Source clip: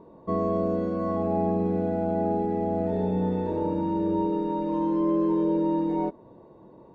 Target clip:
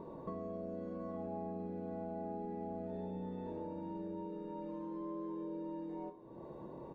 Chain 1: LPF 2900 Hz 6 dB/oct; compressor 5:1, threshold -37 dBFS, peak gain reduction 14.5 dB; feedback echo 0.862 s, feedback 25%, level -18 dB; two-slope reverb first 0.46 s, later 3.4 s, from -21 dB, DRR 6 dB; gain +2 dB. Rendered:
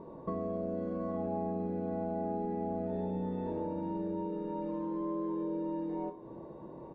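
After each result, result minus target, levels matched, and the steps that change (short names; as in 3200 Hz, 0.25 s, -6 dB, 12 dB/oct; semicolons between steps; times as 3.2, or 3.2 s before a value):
compressor: peak gain reduction -7.5 dB; 4000 Hz band -4.0 dB
change: compressor 5:1, threshold -46 dBFS, peak gain reduction 21.5 dB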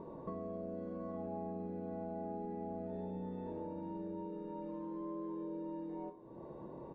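4000 Hz band -3.5 dB
remove: LPF 2900 Hz 6 dB/oct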